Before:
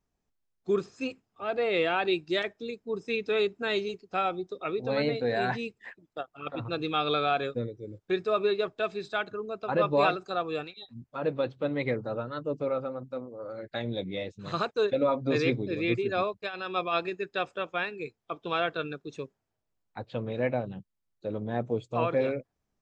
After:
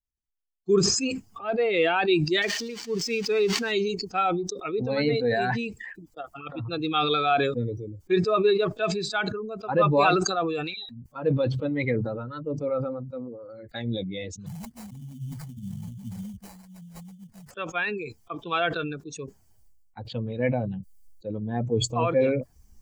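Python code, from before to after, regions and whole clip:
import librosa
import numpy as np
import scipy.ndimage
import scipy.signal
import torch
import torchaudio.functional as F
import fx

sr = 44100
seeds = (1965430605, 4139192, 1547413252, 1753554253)

y = fx.chain(x, sr, fx.crossing_spikes(level_db=-24.0),
    fx.air_absorb(metres=200.0), at=(2.42, 3.72))
y = fx.chain(y, sr, fx.brickwall_bandstop(low_hz=250.0, high_hz=3800.0),
    fx.over_compress(threshold_db=-38.0, ratio=-0.5),
    fx.sample_hold(seeds[0], rate_hz=3300.0, jitter_pct=20), at=(14.46, 17.51))
y = fx.bin_expand(y, sr, power=1.5)
y = fx.notch(y, sr, hz=600.0, q=12.0)
y = fx.sustainer(y, sr, db_per_s=38.0)
y = y * librosa.db_to_amplitude(6.0)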